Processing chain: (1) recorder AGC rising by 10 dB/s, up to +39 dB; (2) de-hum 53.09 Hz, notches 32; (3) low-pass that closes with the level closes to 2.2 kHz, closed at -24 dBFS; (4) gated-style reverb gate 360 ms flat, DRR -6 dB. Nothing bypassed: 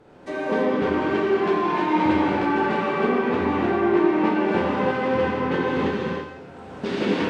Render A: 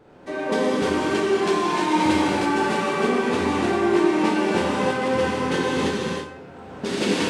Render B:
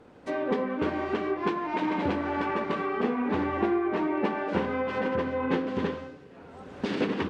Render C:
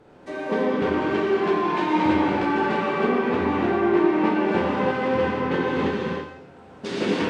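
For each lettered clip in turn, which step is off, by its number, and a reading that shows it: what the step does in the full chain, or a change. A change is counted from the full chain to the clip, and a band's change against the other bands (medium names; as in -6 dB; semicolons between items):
3, 4 kHz band +7.0 dB; 4, momentary loudness spread change -2 LU; 1, momentary loudness spread change -1 LU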